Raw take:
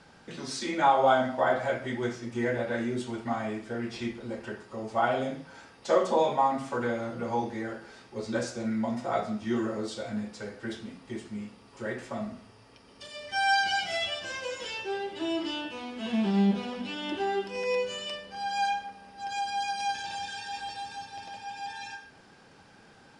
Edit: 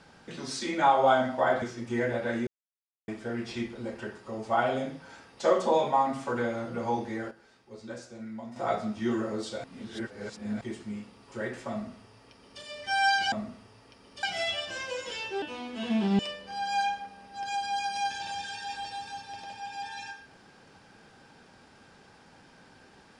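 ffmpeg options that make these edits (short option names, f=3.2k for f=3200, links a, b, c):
-filter_complex "[0:a]asplit=12[a][b][c][d][e][f][g][h][i][j][k][l];[a]atrim=end=1.622[m];[b]atrim=start=2.068:end=2.92,asetpts=PTS-STARTPTS,afade=t=out:st=0.848:d=0.004:c=hsin[n];[c]atrim=start=2.92:end=3.53,asetpts=PTS-STARTPTS,volume=0[o];[d]atrim=start=3.53:end=7.76,asetpts=PTS-STARTPTS,afade=t=in:d=0.004:c=hsin,afade=t=out:st=4.11:d=0.12:c=log:silence=0.298538[p];[e]atrim=start=7.76:end=9.01,asetpts=PTS-STARTPTS,volume=-10.5dB[q];[f]atrim=start=9.01:end=10.092,asetpts=PTS-STARTPTS,afade=t=in:d=0.12:c=log:silence=0.298538[r];[g]atrim=start=10.088:end=11.062,asetpts=PTS-STARTPTS,areverse[s];[h]atrim=start=11.058:end=13.772[t];[i]atrim=start=12.158:end=13.072[u];[j]atrim=start=13.768:end=14.962[v];[k]atrim=start=15.648:end=16.422[w];[l]atrim=start=18.028[x];[n][o][p][q][r]concat=n=5:v=0:a=1[y];[m][y]acrossfade=d=0.004:c1=hsin:c2=hsin[z];[z][s]acrossfade=d=0.004:c1=hsin:c2=hsin[aa];[aa][t]acrossfade=d=0.004:c1=hsin:c2=hsin[ab];[ab][u]acrossfade=d=0.004:c1=hsin:c2=hsin[ac];[ac][v]acrossfade=d=0.004:c1=hsin:c2=hsin[ad];[ad][w]acrossfade=d=0.004:c1=hsin:c2=hsin[ae];[ae][x]acrossfade=d=0.004:c1=hsin:c2=hsin"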